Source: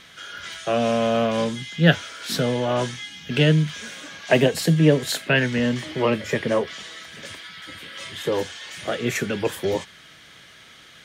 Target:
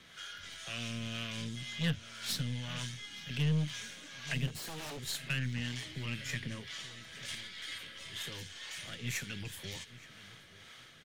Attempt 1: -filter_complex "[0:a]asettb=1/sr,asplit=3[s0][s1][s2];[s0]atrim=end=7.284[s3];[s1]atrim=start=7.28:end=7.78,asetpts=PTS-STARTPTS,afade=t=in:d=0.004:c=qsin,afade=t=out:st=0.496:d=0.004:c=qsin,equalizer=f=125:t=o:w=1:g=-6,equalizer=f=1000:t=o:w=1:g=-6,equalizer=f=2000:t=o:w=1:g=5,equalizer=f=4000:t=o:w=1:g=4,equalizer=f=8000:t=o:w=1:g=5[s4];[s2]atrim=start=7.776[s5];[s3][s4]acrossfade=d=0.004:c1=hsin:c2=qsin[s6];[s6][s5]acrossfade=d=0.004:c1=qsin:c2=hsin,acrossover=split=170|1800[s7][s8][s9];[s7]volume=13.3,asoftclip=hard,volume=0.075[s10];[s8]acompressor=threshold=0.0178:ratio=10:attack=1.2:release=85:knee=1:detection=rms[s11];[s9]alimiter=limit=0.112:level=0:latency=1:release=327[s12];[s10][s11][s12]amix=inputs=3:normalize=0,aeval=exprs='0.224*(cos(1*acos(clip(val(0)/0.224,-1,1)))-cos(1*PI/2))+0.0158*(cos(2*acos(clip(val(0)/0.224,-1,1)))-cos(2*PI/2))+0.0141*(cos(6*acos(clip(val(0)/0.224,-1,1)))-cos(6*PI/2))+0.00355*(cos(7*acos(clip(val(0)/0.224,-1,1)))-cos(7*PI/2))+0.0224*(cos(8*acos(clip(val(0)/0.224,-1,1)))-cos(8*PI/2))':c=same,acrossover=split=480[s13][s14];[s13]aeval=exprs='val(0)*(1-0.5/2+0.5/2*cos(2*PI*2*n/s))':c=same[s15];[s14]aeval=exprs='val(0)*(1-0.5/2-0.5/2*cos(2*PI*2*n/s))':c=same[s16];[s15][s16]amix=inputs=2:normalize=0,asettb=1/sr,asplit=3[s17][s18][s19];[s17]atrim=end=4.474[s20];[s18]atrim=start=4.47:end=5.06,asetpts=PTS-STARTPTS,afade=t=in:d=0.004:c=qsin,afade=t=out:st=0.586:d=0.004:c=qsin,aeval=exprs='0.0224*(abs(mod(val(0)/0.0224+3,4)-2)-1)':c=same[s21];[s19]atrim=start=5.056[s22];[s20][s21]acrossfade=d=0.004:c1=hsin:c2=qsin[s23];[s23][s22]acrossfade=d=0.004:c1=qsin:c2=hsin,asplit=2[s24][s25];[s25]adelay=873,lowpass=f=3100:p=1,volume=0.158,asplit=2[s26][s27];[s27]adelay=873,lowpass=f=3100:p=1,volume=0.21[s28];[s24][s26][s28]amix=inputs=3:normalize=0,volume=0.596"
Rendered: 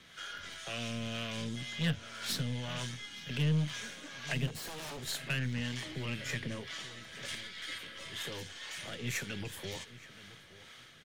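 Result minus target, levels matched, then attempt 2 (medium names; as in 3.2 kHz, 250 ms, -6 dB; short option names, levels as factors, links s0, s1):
compression: peak gain reduction -9 dB
-filter_complex "[0:a]asettb=1/sr,asplit=3[s0][s1][s2];[s0]atrim=end=7.284[s3];[s1]atrim=start=7.28:end=7.78,asetpts=PTS-STARTPTS,afade=t=in:d=0.004:c=qsin,afade=t=out:st=0.496:d=0.004:c=qsin,equalizer=f=125:t=o:w=1:g=-6,equalizer=f=1000:t=o:w=1:g=-6,equalizer=f=2000:t=o:w=1:g=5,equalizer=f=4000:t=o:w=1:g=4,equalizer=f=8000:t=o:w=1:g=5[s4];[s2]atrim=start=7.776[s5];[s3][s4]acrossfade=d=0.004:c1=hsin:c2=qsin[s6];[s6][s5]acrossfade=d=0.004:c1=qsin:c2=hsin,acrossover=split=170|1800[s7][s8][s9];[s7]volume=13.3,asoftclip=hard,volume=0.075[s10];[s8]acompressor=threshold=0.00562:ratio=10:attack=1.2:release=85:knee=1:detection=rms[s11];[s9]alimiter=limit=0.112:level=0:latency=1:release=327[s12];[s10][s11][s12]amix=inputs=3:normalize=0,aeval=exprs='0.224*(cos(1*acos(clip(val(0)/0.224,-1,1)))-cos(1*PI/2))+0.0158*(cos(2*acos(clip(val(0)/0.224,-1,1)))-cos(2*PI/2))+0.0141*(cos(6*acos(clip(val(0)/0.224,-1,1)))-cos(6*PI/2))+0.00355*(cos(7*acos(clip(val(0)/0.224,-1,1)))-cos(7*PI/2))+0.0224*(cos(8*acos(clip(val(0)/0.224,-1,1)))-cos(8*PI/2))':c=same,acrossover=split=480[s13][s14];[s13]aeval=exprs='val(0)*(1-0.5/2+0.5/2*cos(2*PI*2*n/s))':c=same[s15];[s14]aeval=exprs='val(0)*(1-0.5/2-0.5/2*cos(2*PI*2*n/s))':c=same[s16];[s15][s16]amix=inputs=2:normalize=0,asettb=1/sr,asplit=3[s17][s18][s19];[s17]atrim=end=4.474[s20];[s18]atrim=start=4.47:end=5.06,asetpts=PTS-STARTPTS,afade=t=in:d=0.004:c=qsin,afade=t=out:st=0.586:d=0.004:c=qsin,aeval=exprs='0.0224*(abs(mod(val(0)/0.0224+3,4)-2)-1)':c=same[s21];[s19]atrim=start=5.056[s22];[s20][s21]acrossfade=d=0.004:c1=hsin:c2=qsin[s23];[s23][s22]acrossfade=d=0.004:c1=qsin:c2=hsin,asplit=2[s24][s25];[s25]adelay=873,lowpass=f=3100:p=1,volume=0.158,asplit=2[s26][s27];[s27]adelay=873,lowpass=f=3100:p=1,volume=0.21[s28];[s24][s26][s28]amix=inputs=3:normalize=0,volume=0.596"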